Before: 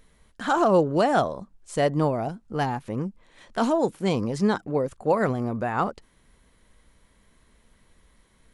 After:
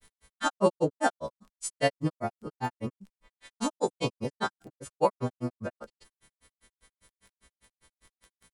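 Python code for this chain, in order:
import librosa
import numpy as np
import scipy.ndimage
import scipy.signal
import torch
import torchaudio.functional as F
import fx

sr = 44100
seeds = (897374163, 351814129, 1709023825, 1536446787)

y = fx.freq_snap(x, sr, grid_st=2)
y = fx.dmg_crackle(y, sr, seeds[0], per_s=19.0, level_db=-38.0)
y = fx.granulator(y, sr, seeds[1], grain_ms=104.0, per_s=5.0, spray_ms=100.0, spread_st=0)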